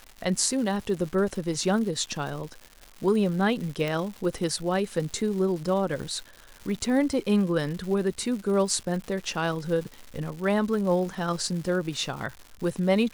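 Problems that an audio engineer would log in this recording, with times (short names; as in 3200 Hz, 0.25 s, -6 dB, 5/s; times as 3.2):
crackle 280/s -35 dBFS
3.88 pop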